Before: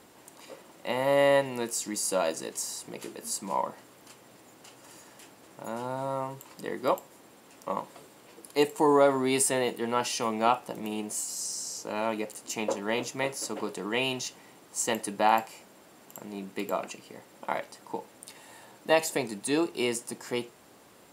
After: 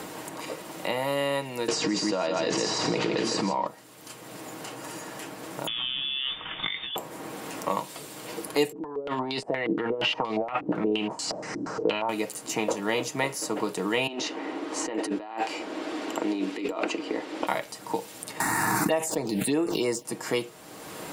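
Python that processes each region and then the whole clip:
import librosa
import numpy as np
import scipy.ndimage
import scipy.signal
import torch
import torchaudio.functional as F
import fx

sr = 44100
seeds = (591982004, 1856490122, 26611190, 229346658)

y = fx.chain(x, sr, fx.lowpass(hz=5000.0, slope=24),
    fx.echo_single(ms=159, db=-5.5),
    fx.env_flatten(amount_pct=100), at=(1.68, 3.67))
y = fx.chain(y, sr, fx.over_compress(threshold_db=-37.0, ratio=-1.0),
    fx.cheby1_highpass(hz=480.0, order=3),
    fx.freq_invert(carrier_hz=4000), at=(5.67, 6.96))
y = fx.chain(y, sr, fx.over_compress(threshold_db=-35.0, ratio=-1.0),
    fx.filter_held_lowpass(hz=8.5, low_hz=300.0, high_hz=4400.0), at=(8.72, 12.09))
y = fx.chain(y, sr, fx.lowpass(hz=3700.0, slope=12),
    fx.low_shelf_res(hz=210.0, db=-11.0, q=3.0),
    fx.over_compress(threshold_db=-38.0, ratio=-1.0), at=(14.07, 17.47))
y = fx.chain(y, sr, fx.leveller(passes=1),
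    fx.env_phaser(low_hz=510.0, high_hz=4500.0, full_db=-18.5),
    fx.pre_swell(db_per_s=25.0), at=(18.4, 20.05))
y = fx.rider(y, sr, range_db=3, speed_s=0.5)
y = y + 0.38 * np.pad(y, (int(6.4 * sr / 1000.0), 0))[:len(y)]
y = fx.band_squash(y, sr, depth_pct=70)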